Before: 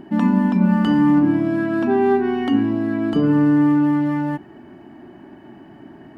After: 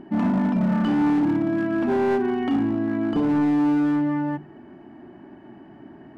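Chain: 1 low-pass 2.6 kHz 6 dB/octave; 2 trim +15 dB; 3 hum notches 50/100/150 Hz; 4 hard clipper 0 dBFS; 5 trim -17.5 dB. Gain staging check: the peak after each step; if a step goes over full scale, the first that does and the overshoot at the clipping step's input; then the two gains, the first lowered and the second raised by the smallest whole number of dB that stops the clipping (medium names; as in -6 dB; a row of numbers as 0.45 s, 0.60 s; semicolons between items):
-6.0 dBFS, +9.0 dBFS, +9.0 dBFS, 0.0 dBFS, -17.5 dBFS; step 2, 9.0 dB; step 2 +6 dB, step 5 -8.5 dB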